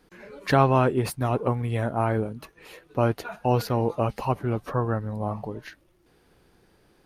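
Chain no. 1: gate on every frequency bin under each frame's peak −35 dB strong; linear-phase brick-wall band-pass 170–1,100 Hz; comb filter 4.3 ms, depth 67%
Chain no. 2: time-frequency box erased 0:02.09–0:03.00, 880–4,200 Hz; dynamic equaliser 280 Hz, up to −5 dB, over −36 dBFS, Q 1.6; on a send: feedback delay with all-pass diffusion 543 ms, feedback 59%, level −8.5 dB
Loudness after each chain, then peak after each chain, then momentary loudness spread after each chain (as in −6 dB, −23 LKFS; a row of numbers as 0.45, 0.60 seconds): −26.0, −26.5 LKFS; −7.0, −7.0 dBFS; 13, 18 LU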